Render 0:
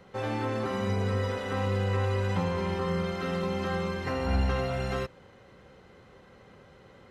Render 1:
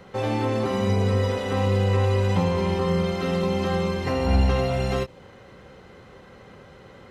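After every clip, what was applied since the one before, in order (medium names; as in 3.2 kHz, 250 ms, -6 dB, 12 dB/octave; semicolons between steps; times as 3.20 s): dynamic bell 1.5 kHz, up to -7 dB, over -52 dBFS, Q 1.8; endings held to a fixed fall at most 460 dB/s; trim +7 dB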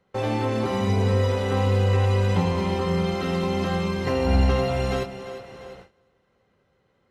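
two-band feedback delay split 350 Hz, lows 133 ms, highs 350 ms, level -12 dB; gate with hold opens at -32 dBFS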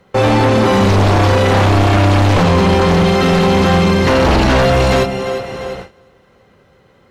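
sine folder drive 11 dB, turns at -9.5 dBFS; trim +2 dB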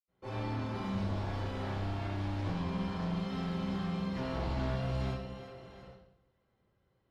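reverberation RT60 0.65 s, pre-delay 76 ms; trim -4 dB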